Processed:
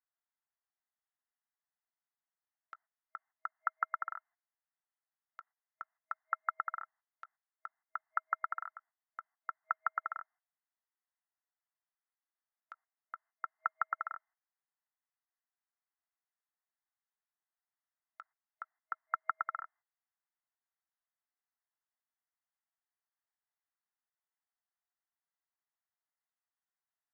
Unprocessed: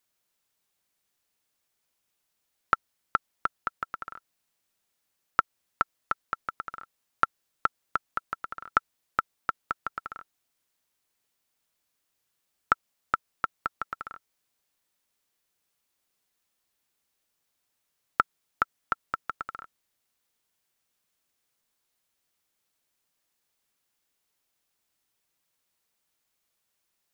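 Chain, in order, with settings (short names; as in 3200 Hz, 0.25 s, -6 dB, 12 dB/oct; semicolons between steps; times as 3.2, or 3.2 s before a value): negative-ratio compressor -29 dBFS, ratio -0.5; FFT band-pass 640–2100 Hz; gate -60 dBFS, range -13 dB; gain -4 dB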